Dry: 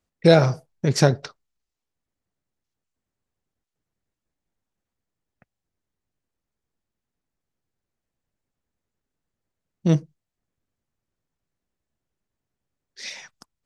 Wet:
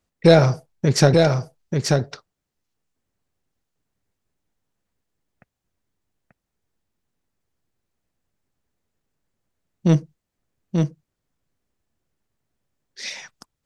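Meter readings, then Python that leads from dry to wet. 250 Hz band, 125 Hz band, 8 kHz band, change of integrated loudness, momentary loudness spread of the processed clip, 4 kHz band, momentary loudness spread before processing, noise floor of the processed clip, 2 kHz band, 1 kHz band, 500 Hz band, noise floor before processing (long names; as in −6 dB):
+3.5 dB, +4.0 dB, +4.5 dB, +1.0 dB, 18 LU, +3.5 dB, 20 LU, −82 dBFS, +3.0 dB, +3.0 dB, +3.0 dB, below −85 dBFS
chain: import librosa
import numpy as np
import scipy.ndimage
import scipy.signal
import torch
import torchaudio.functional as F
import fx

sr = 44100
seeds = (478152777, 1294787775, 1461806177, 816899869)

p1 = 10.0 ** (-13.5 / 20.0) * np.tanh(x / 10.0 ** (-13.5 / 20.0))
p2 = x + F.gain(torch.from_numpy(p1), -3.5).numpy()
p3 = p2 + 10.0 ** (-4.0 / 20.0) * np.pad(p2, (int(886 * sr / 1000.0), 0))[:len(p2)]
y = F.gain(torch.from_numpy(p3), -1.0).numpy()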